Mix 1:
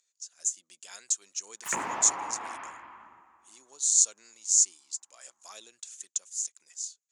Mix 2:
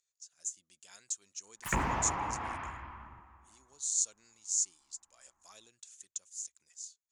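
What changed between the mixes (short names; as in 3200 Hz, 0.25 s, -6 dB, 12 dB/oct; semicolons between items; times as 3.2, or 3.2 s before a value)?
speech -9.0 dB; master: remove HPF 320 Hz 12 dB/oct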